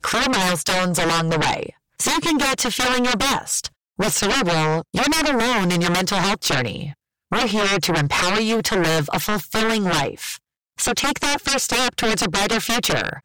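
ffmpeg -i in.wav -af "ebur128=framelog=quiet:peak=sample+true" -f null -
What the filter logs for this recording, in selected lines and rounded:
Integrated loudness:
  I:         -19.5 LUFS
  Threshold: -29.8 LUFS
Loudness range:
  LRA:         1.5 LU
  Threshold: -39.9 LUFS
  LRA low:   -20.8 LUFS
  LRA high:  -19.3 LUFS
Sample peak:
  Peak:      -13.1 dBFS
True peak:
  Peak:      -12.7 dBFS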